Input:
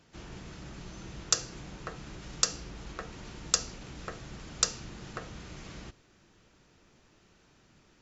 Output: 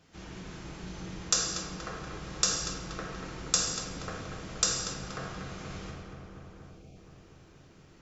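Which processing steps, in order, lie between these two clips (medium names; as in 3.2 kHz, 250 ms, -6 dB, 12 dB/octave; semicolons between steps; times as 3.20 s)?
on a send: filtered feedback delay 238 ms, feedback 80%, low-pass 2.3 kHz, level -6 dB; on the sum: time-frequency box 6.68–6.96 s, 810–2100 Hz -29 dB; gated-style reverb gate 310 ms falling, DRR -2 dB; trim -2 dB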